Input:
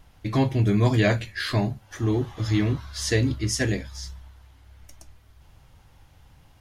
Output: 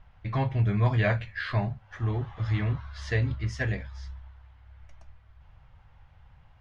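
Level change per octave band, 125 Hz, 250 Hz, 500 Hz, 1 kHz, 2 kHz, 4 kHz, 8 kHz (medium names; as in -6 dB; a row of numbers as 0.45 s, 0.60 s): -2.5 dB, -9.5 dB, -7.0 dB, -2.0 dB, -2.5 dB, -11.5 dB, under -20 dB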